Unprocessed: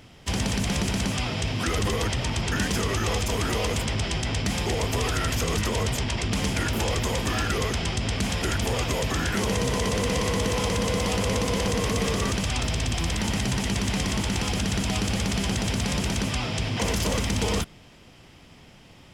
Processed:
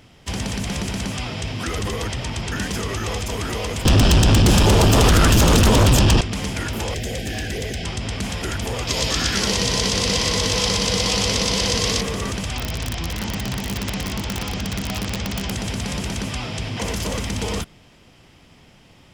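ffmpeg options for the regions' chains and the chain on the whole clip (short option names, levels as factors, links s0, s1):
-filter_complex "[0:a]asettb=1/sr,asplit=3[s0][s1][s2];[s0]atrim=end=3.854[s3];[s1]atrim=start=3.85:end=6.21,asetpts=PTS-STARTPTS,afade=t=in:d=0.004:c=qsin,afade=t=out:st=2.356:d=0.004:c=qsin,asuperstop=centerf=2100:order=4:qfactor=3.6,lowshelf=f=140:g=9,aeval=exprs='0.316*sin(PI/2*3.16*val(0)/0.316)':c=same[s4];[s2]atrim=start=6.206[s5];[s3][s4]acrossfade=d=0.004:c1=hsin:c2=qsin[s6];[s6][s5]acrossfade=d=0.004:c1=qsin:c2=hsin,asettb=1/sr,asplit=3[s7][s8][s9];[s7]atrim=end=6.944[s10];[s8]atrim=start=6.94:end=7.84,asetpts=PTS-STARTPTS,afade=t=in:d=0.004:c=qsin,afade=t=out:st=0.896:d=0.004:c=qsin,asuperstop=centerf=1100:order=20:qfactor=1.6,asoftclip=type=hard:threshold=0.0891[s11];[s9]atrim=start=7.836[s12];[s10][s11]acrossfade=d=0.004:c1=hsin:c2=qsin[s13];[s13][s12]acrossfade=d=0.004:c1=qsin:c2=hsin,asettb=1/sr,asplit=3[s14][s15][s16];[s14]atrim=end=8.874[s17];[s15]atrim=start=8.87:end=12.01,asetpts=PTS-STARTPTS,afade=t=in:d=0.004:c=qsin,afade=t=out:st=3.136:d=0.004:c=qsin,equalizer=f=4700:w=0.96:g=13,aecho=1:1:99:0.631,atrim=end_sample=138474[s18];[s16]atrim=start=12.006[s19];[s17][s18]acrossfade=d=0.004:c1=hsin:c2=qsin[s20];[s20][s19]acrossfade=d=0.004:c1=qsin:c2=hsin,asettb=1/sr,asplit=3[s21][s22][s23];[s21]atrim=end=12.554[s24];[s22]atrim=start=12.55:end=15.51,asetpts=PTS-STARTPTS,afade=t=in:d=0.004:c=qsin,afade=t=out:st=2.956:d=0.004:c=qsin,lowpass=f=6300:w=0.5412,lowpass=f=6300:w=1.3066,aeval=exprs='(mod(7.5*val(0)+1,2)-1)/7.5':c=same[s25];[s23]atrim=start=15.506[s26];[s24][s25]acrossfade=d=0.004:c1=hsin:c2=qsin[s27];[s27][s26]acrossfade=d=0.004:c1=qsin:c2=hsin"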